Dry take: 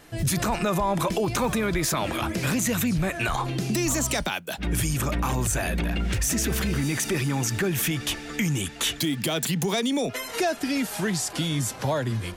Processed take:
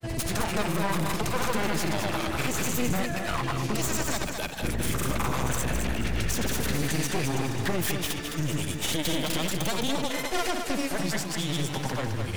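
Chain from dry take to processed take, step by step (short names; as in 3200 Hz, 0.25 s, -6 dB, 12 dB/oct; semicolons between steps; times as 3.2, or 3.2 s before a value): one-sided fold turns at -28 dBFS; grains; lo-fi delay 0.212 s, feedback 35%, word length 9-bit, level -5.5 dB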